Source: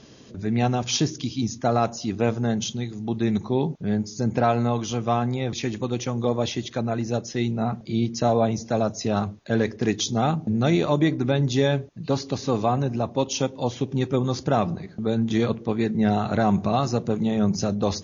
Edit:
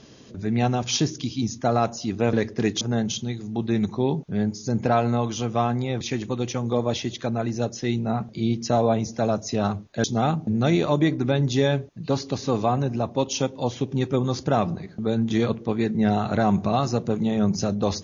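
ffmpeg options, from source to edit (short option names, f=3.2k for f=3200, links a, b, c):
-filter_complex "[0:a]asplit=4[a][b][c][d];[a]atrim=end=2.332[e];[b]atrim=start=9.558:end=10.042[f];[c]atrim=start=2.328:end=9.562[g];[d]atrim=start=10.038[h];[e][f]acrossfade=d=0.004:c1=hsin:c2=hsin[i];[i][g]acrossfade=d=0.004:c1=hsin:c2=hsin[j];[j][h]acrossfade=d=0.004:c1=hsin:c2=hsin"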